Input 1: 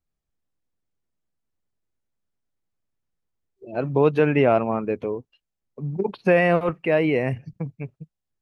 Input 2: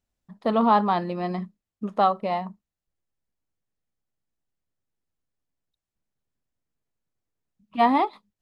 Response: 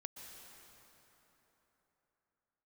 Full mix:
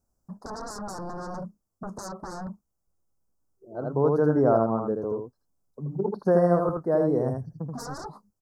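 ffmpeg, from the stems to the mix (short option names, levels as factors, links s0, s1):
-filter_complex "[0:a]volume=0.668,asplit=2[s0][s1];[s1]volume=0.596[s2];[1:a]equalizer=f=2700:w=0.88:g=-3.5,acompressor=threshold=0.0447:ratio=3,aeval=exprs='0.0447*sin(PI/2*2.24*val(0)/0.0447)':c=same,volume=0.596,asplit=2[s3][s4];[s4]apad=whole_len=370973[s5];[s0][s5]sidechaincompress=threshold=0.00251:ratio=8:attack=16:release=1480[s6];[s2]aecho=0:1:80:1[s7];[s6][s3][s7]amix=inputs=3:normalize=0,asuperstop=centerf=2700:order=8:qfactor=0.76"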